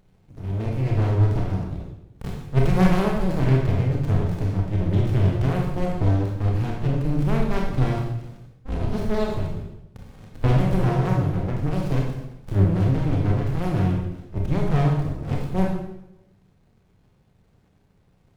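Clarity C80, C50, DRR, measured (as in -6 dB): 6.0 dB, 2.5 dB, -1.0 dB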